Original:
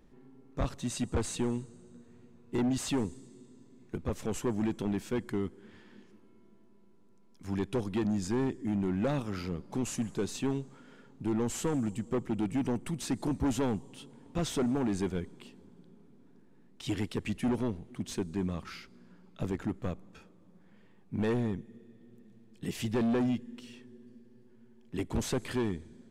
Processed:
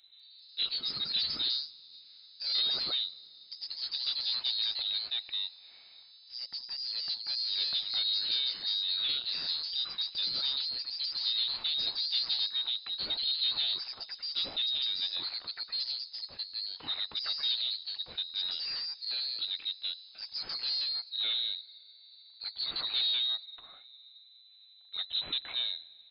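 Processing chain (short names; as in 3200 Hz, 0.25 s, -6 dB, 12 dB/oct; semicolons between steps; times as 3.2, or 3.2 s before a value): tracing distortion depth 0.021 ms; inverted band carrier 4000 Hz; echoes that change speed 0.196 s, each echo +2 st, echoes 2; gain -3 dB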